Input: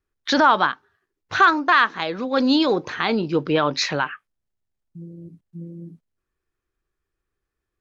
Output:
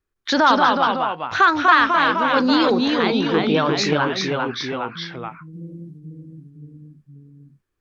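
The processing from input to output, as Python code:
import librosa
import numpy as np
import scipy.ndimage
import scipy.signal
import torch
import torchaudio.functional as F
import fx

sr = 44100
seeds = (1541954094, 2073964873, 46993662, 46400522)

y = fx.echo_pitch(x, sr, ms=161, semitones=-1, count=3, db_per_echo=-3.0)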